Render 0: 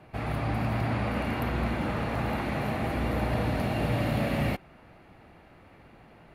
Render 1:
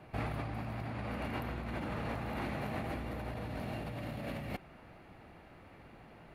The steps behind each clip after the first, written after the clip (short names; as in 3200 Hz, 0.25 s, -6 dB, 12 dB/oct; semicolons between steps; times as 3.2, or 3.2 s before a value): negative-ratio compressor -33 dBFS, ratio -1; gain -6 dB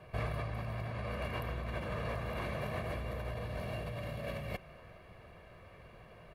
comb 1.8 ms, depth 66%; on a send at -20.5 dB: reverb RT60 2.5 s, pre-delay 0.11 s; on the sum: gain -1 dB